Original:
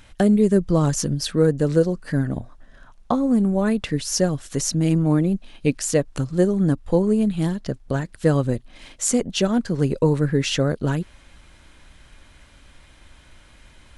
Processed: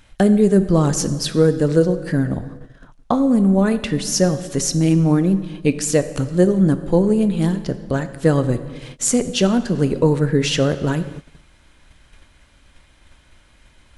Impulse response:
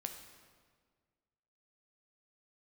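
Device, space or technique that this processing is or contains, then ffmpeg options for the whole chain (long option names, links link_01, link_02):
keyed gated reverb: -filter_complex "[0:a]asplit=3[link_01][link_02][link_03];[1:a]atrim=start_sample=2205[link_04];[link_02][link_04]afir=irnorm=-1:irlink=0[link_05];[link_03]apad=whole_len=616352[link_06];[link_05][link_06]sidechaingate=range=-33dB:threshold=-43dB:ratio=16:detection=peak,volume=3dB[link_07];[link_01][link_07]amix=inputs=2:normalize=0,volume=-3dB"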